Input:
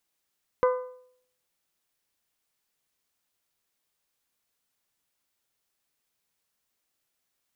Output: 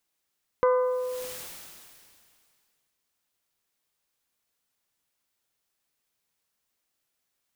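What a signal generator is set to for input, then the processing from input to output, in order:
metal hit bell, lowest mode 504 Hz, modes 5, decay 0.64 s, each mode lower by 6 dB, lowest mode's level -17 dB
sustainer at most 26 dB/s

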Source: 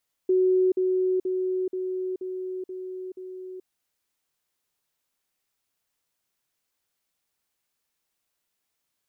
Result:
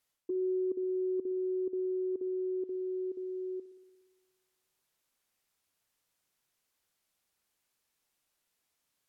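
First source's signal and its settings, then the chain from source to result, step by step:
level ladder 371 Hz -17.5 dBFS, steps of -3 dB, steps 7, 0.43 s 0.05 s
treble ducked by the level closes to 480 Hz, closed at -25.5 dBFS; reverse; compressor 5:1, threshold -33 dBFS; reverse; spring tank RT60 1.4 s, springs 59 ms, DRR 14 dB

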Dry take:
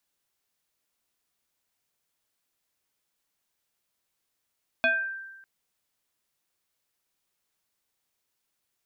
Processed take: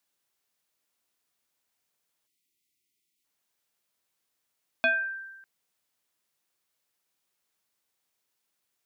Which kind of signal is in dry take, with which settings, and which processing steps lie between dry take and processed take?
FM tone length 0.60 s, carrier 1570 Hz, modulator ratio 0.58, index 1.5, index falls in 0.47 s exponential, decay 1.13 s, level -18 dB
spectral delete 2.27–3.24, 410–1900 Hz; low shelf 79 Hz -10.5 dB

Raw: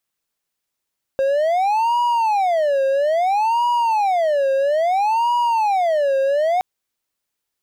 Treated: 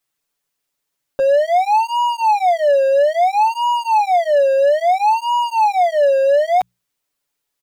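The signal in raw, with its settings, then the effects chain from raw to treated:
siren wail 538–963 Hz 0.6/s triangle -13 dBFS 5.42 s
notches 60/120/180 Hz; comb 7 ms, depth 98%

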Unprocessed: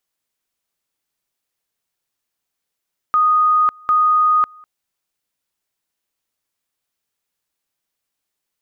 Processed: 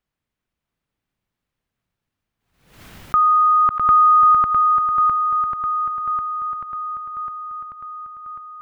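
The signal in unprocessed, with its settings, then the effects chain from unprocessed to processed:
two-level tone 1240 Hz -11 dBFS, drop 28.5 dB, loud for 0.55 s, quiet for 0.20 s, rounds 2
tone controls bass +14 dB, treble -14 dB; swung echo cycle 1.093 s, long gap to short 1.5:1, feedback 50%, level -5 dB; backwards sustainer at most 86 dB/s

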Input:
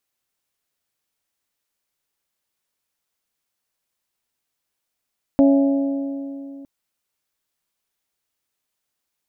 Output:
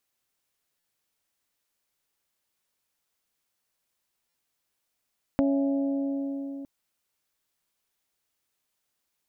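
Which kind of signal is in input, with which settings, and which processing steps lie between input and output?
metal hit bell, length 1.26 s, lowest mode 277 Hz, modes 4, decay 2.92 s, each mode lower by 7 dB, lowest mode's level -10 dB
compressor 2.5:1, threshold -27 dBFS; stuck buffer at 0.79/4.29, samples 256, times 8

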